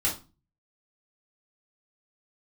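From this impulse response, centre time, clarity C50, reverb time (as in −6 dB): 22 ms, 9.5 dB, 0.30 s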